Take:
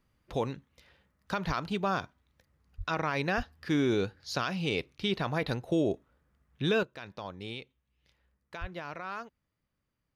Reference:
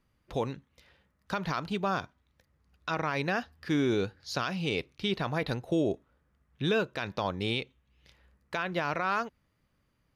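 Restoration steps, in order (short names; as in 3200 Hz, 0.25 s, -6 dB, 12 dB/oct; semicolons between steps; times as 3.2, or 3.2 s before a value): de-plosive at 1.46/2.77/3.36/8.6; gain 0 dB, from 6.83 s +9.5 dB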